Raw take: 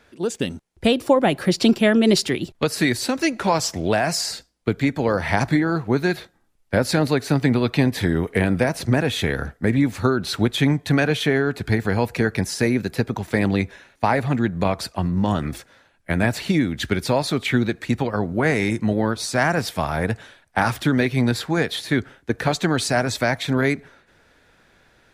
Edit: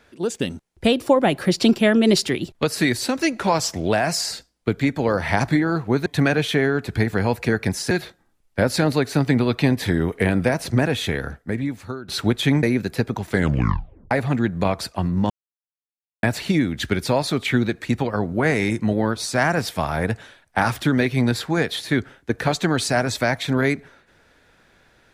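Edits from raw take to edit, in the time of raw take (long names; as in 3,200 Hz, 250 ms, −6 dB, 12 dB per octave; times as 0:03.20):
0:09.01–0:10.23: fade out, to −16.5 dB
0:10.78–0:12.63: move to 0:06.06
0:13.30: tape stop 0.81 s
0:15.30–0:16.23: silence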